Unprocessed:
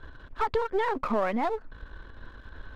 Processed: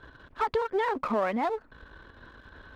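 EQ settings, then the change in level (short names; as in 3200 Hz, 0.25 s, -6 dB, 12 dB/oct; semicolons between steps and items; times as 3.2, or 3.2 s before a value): HPF 120 Hz 6 dB/oct; 0.0 dB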